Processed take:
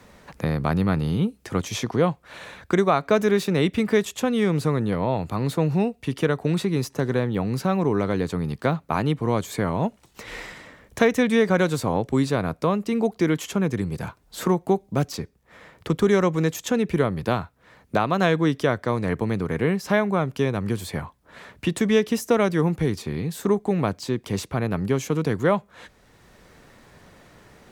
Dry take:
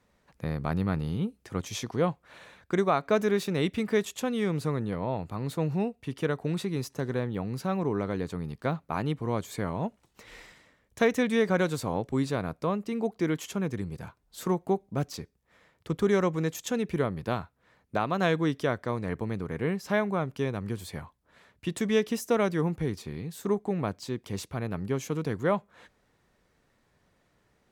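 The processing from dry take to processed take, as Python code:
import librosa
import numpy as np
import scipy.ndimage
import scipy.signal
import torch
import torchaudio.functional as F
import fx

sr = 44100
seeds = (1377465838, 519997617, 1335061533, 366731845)

y = fx.band_squash(x, sr, depth_pct=40)
y = F.gain(torch.from_numpy(y), 6.5).numpy()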